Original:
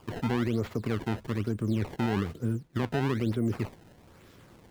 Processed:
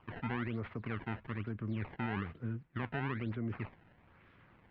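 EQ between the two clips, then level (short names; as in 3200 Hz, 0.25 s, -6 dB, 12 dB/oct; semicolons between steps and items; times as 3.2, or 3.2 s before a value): LPF 2400 Hz 24 dB/oct; tilt shelf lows -4.5 dB, about 1200 Hz; bell 430 Hz -5.5 dB 1.4 oct; -3.5 dB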